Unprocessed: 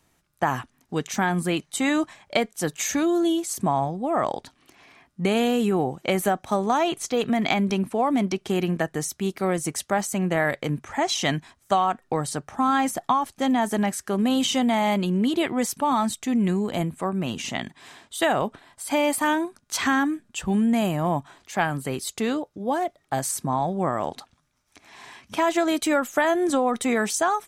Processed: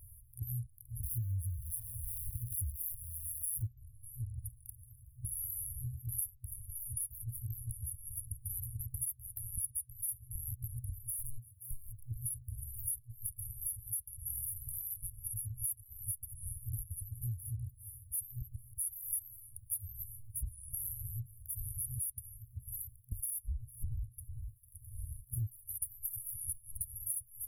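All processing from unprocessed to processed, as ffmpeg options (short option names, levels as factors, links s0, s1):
-filter_complex "[0:a]asettb=1/sr,asplit=3[s0][s1][s2];[s0]atrim=end=1.034[s3];[s1]atrim=start=1.03:end=3.67,asetpts=PTS-STARTPTS,afade=t=in:d=0.004:c=qsin,afade=t=out:st=2.636:d=0.004:c=qsin,aeval=exprs='val(0)+0.5*0.02*sgn(val(0))':c=same,aeval=exprs='val(0)*sin(2*PI*82*n/s)':c=same[s4];[s2]atrim=start=3.666[s5];[s3][s4]acrossfade=d=0.004:c1=hsin:c2=qsin[s6];[s6][s5]acrossfade=d=0.004:c1=qsin:c2=hsin,asettb=1/sr,asplit=3[s7][s8][s9];[s7]atrim=end=11.194[s10];[s8]atrim=start=11.19:end=11.98,asetpts=PTS-STARTPTS,afade=t=in:d=0.004:c=qsin,afade=t=out:st=0.786:d=0.004:c=qsin,highpass=f=110:w=0.5412,highpass=f=110:w=1.3066,aeval=exprs='(tanh(12.6*val(0)+0.15)-tanh(0.15))/12.6':c=same[s11];[s9]atrim=start=11.976[s12];[s10][s11]acrossfade=d=0.004:c1=hsin:c2=qsin[s13];[s13][s12]acrossfade=d=0.004:c1=qsin:c2=hsin,asettb=1/sr,asplit=3[s14][s15][s16];[s14]atrim=end=23.014[s17];[s15]atrim=start=23.01:end=25.47,asetpts=PTS-STARTPTS,afade=t=in:d=0.004:c=qsin,afade=t=out:st=2.456:d=0.004:c=qsin,deesser=0.5,aecho=1:1:450|900:0.0891|0.0134,atrim=end_sample=108486,aeval=exprs='val(0)*sin(2*PI*1100*n/s)':c=same[s18];[s16]atrim=start=25.466[s19];[s17][s18]acrossfade=d=0.004:c1=hsin:c2=qsin[s20];[s20][s19]acrossfade=d=0.004:c1=qsin:c2=hsin,afftfilt=real='re*(1-between(b*sr/4096,120,9700))':imag='im*(1-between(b*sr/4096,120,9700))':win_size=4096:overlap=0.75,acompressor=threshold=0.002:ratio=6,volume=7.5"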